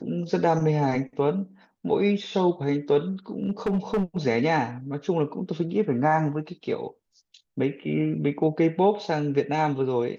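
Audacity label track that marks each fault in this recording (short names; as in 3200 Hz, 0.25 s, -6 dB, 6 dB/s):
3.440000	4.260000	clipped -20 dBFS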